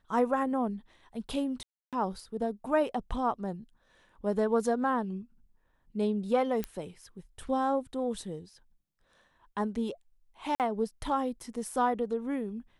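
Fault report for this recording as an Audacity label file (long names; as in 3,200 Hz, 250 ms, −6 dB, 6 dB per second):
1.630000	1.930000	drop-out 297 ms
6.640000	6.640000	click −18 dBFS
10.550000	10.600000	drop-out 48 ms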